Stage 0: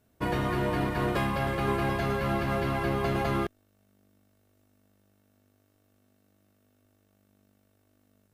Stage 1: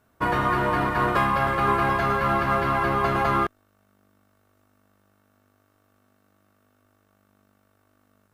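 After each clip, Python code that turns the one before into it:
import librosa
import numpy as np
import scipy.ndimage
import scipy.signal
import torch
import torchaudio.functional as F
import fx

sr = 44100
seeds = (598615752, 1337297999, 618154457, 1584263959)

y = fx.peak_eq(x, sr, hz=1200.0, db=12.0, octaves=1.2)
y = F.gain(torch.from_numpy(y), 1.0).numpy()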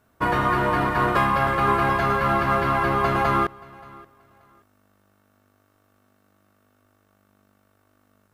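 y = fx.echo_feedback(x, sr, ms=578, feedback_pct=23, wet_db=-23.0)
y = F.gain(torch.from_numpy(y), 1.5).numpy()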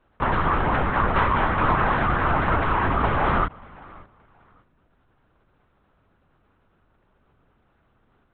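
y = fx.lpc_vocoder(x, sr, seeds[0], excitation='whisper', order=8)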